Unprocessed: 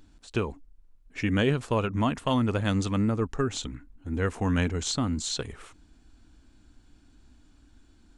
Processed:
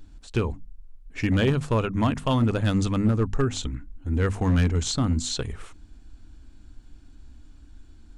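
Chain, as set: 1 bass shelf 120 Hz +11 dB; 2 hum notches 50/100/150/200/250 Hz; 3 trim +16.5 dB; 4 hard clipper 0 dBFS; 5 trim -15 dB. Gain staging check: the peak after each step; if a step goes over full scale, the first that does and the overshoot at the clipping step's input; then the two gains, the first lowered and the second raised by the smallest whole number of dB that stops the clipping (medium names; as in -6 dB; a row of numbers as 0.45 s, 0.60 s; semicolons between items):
-8.5 dBFS, -9.0 dBFS, +7.5 dBFS, 0.0 dBFS, -15.0 dBFS; step 3, 7.5 dB; step 3 +8.5 dB, step 5 -7 dB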